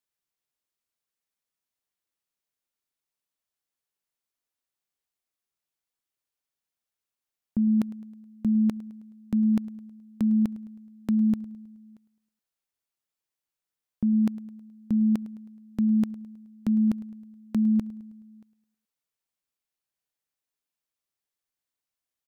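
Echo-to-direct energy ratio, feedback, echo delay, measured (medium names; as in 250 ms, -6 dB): -18.0 dB, 49%, 106 ms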